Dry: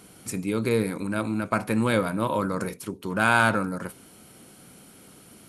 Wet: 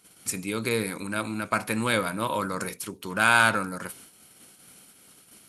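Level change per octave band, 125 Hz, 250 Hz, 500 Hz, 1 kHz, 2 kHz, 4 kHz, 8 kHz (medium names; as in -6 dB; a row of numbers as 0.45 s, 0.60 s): -5.5 dB, -5.0 dB, -3.5 dB, 0.0 dB, +2.0 dB, +4.5 dB, +5.0 dB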